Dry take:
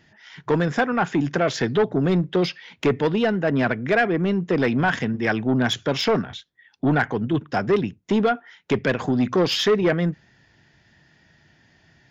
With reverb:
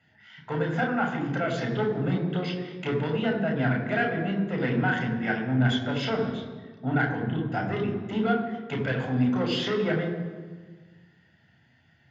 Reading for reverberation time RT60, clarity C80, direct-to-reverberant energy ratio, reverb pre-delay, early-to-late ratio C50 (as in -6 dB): 1.5 s, 8.0 dB, 1.0 dB, 3 ms, 6.0 dB